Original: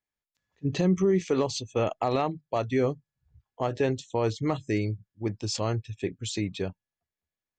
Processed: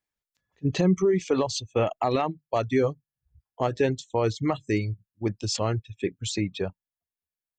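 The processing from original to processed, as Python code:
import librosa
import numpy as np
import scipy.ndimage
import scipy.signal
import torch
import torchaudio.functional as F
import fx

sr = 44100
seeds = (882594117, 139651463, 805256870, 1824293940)

y = fx.dereverb_blind(x, sr, rt60_s=1.5)
y = F.gain(torch.from_numpy(y), 3.0).numpy()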